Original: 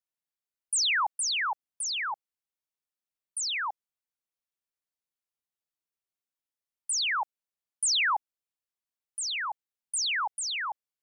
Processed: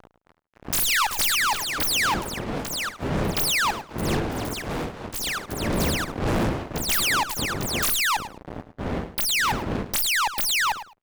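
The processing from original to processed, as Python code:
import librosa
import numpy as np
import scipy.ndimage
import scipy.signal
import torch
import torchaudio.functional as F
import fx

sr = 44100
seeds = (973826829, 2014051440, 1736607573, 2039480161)

p1 = fx.tracing_dist(x, sr, depth_ms=0.2)
p2 = fx.dmg_wind(p1, sr, seeds[0], corner_hz=350.0, level_db=-44.0)
p3 = fx.fuzz(p2, sr, gain_db=46.0, gate_db=-49.0)
p4 = p3 + fx.echo_feedback(p3, sr, ms=106, feedback_pct=18, wet_db=-12.5, dry=0)
p5 = fx.echo_pitch(p4, sr, ms=268, semitones=6, count=3, db_per_echo=-6.0)
y = p5 * librosa.db_to_amplitude(-8.0)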